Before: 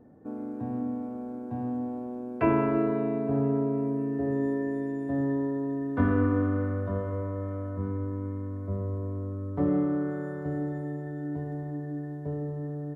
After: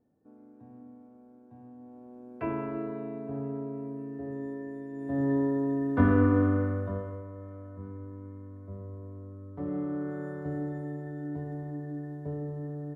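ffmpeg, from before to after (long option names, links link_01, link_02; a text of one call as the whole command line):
ffmpeg -i in.wav -af "volume=9.5dB,afade=type=in:start_time=1.77:duration=0.65:silence=0.354813,afade=type=in:start_time=4.9:duration=0.46:silence=0.281838,afade=type=out:start_time=6.48:duration=0.75:silence=0.251189,afade=type=in:start_time=9.6:duration=0.65:silence=0.421697" out.wav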